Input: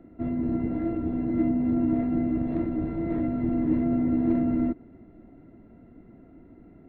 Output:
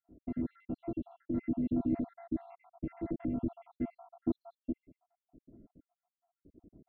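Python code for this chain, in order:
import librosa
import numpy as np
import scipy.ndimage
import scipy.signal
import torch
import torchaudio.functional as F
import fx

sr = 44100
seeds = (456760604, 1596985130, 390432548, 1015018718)

y = fx.spec_dropout(x, sr, seeds[0], share_pct=73)
y = fx.env_lowpass(y, sr, base_hz=460.0, full_db=-28.0)
y = F.gain(torch.from_numpy(y), -5.5).numpy()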